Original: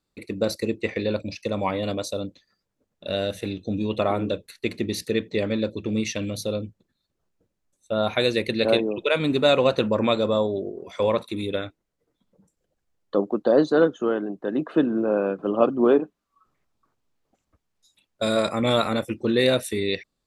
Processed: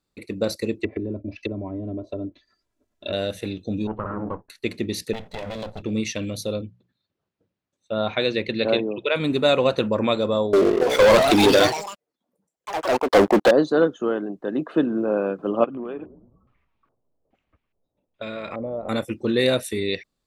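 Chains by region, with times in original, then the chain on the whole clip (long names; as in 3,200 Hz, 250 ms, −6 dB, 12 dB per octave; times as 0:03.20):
0:00.79–0:03.13: treble cut that deepens with the level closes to 320 Hz, closed at −23 dBFS + dynamic equaliser 3,200 Hz, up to +6 dB, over −54 dBFS, Q 1.4 + comb filter 3 ms, depth 73%
0:03.87–0:04.50: lower of the sound and its delayed copy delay 0.67 ms + low-pass filter 1,300 Hz 24 dB per octave + low-shelf EQ 82 Hz −10 dB
0:05.13–0:05.82: lower of the sound and its delayed copy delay 1.5 ms + downward compressor 10 to 1, threshold −27 dBFS
0:06.61–0:09.16: Chebyshev band-pass filter 100–3,800 Hz + mains-hum notches 60/120/180 Hz
0:10.53–0:13.51: high-pass filter 320 Hz 6 dB per octave + leveller curve on the samples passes 5 + delay with pitch and tempo change per echo 280 ms, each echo +4 semitones, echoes 3, each echo −6 dB
0:15.64–0:18.89: downward compressor 12 to 1, threshold −28 dBFS + echo with shifted repeats 106 ms, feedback 62%, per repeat −60 Hz, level −18.5 dB + auto-filter low-pass square 1.2 Hz 590–2,600 Hz
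whole clip: no processing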